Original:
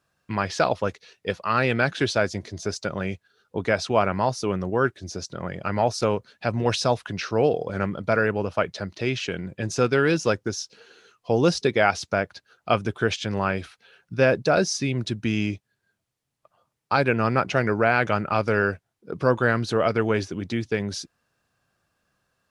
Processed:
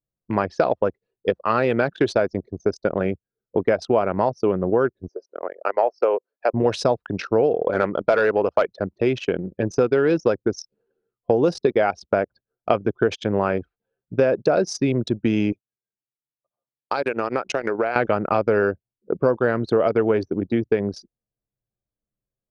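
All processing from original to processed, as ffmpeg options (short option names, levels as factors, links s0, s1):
-filter_complex "[0:a]asettb=1/sr,asplit=3[s0][s1][s2];[s0]atrim=end=5.084[s3];[s1]atrim=start=5.08:end=6.54,asetpts=PTS-STARTPTS,afade=t=in:d=0.004:c=qsin,afade=t=out:st=1.456:d=0.004:c=qsin,acrossover=split=4600[s4][s5];[s5]acompressor=threshold=0.00708:ratio=4:attack=1:release=60[s6];[s4][s6]amix=inputs=2:normalize=0,highpass=f=400:w=0.5412,highpass=f=400:w=1.3066,equalizer=f=3600:w=7.8:g=-13.5[s7];[s2]atrim=start=6.536[s8];[s3][s7]acrossfade=d=0.004:c1=hsin:c2=qsin[s9];[s9][s8]acrossfade=d=0.004:c1=qsin:c2=hsin,asettb=1/sr,asplit=3[s10][s11][s12];[s10]atrim=end=7.644[s13];[s11]atrim=start=7.64:end=8.71,asetpts=PTS-STARTPTS,afade=t=in:d=0.004:c=qsin,afade=t=out:st=1.066:d=0.004:c=qsin,highpass=49,equalizer=f=130:w=0.38:g=-12,aeval=exprs='0.316*sin(PI/2*1.58*val(0)/0.316)':c=same[s14];[s12]atrim=start=8.706[s15];[s13][s14]acrossfade=d=0.004:c1=hsin:c2=qsin[s16];[s16][s15]acrossfade=d=0.004:c1=qsin:c2=hsin,asettb=1/sr,asplit=3[s17][s18][s19];[s17]atrim=end=15.524[s20];[s18]atrim=start=15.52:end=17.96,asetpts=PTS-STARTPTS,afade=t=in:d=0.004:c=qsin,afade=t=out:st=2.436:d=0.004:c=qsin,aemphasis=mode=production:type=riaa,acompressor=threshold=0.0708:ratio=12:attack=3.2:release=140:knee=1:detection=peak[s21];[s19]atrim=start=17.956[s22];[s20][s21]acrossfade=d=0.004:c1=hsin:c2=qsin[s23];[s23][s22]acrossfade=d=0.004:c1=qsin:c2=hsin,anlmdn=63.1,equalizer=f=460:w=0.5:g=12,acompressor=threshold=0.2:ratio=6,volume=0.891"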